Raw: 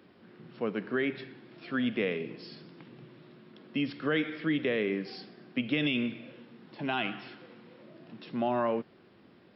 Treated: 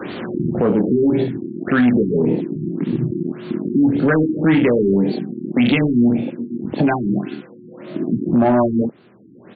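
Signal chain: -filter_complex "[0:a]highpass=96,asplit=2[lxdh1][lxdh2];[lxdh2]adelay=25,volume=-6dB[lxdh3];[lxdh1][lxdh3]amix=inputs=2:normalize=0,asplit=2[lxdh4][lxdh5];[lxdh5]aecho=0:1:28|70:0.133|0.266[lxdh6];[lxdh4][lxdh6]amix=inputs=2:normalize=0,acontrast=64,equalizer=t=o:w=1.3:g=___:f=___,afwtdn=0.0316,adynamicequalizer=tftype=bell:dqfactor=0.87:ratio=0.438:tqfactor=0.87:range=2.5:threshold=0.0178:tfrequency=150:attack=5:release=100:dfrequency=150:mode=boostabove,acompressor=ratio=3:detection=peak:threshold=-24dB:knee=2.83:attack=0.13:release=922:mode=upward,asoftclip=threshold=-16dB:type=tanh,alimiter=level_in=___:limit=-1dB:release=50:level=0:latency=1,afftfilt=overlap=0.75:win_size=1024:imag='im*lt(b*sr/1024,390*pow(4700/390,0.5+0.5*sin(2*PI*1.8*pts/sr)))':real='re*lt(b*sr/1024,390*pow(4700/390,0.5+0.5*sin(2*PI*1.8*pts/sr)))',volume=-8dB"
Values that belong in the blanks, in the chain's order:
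5, 4.6k, 24.5dB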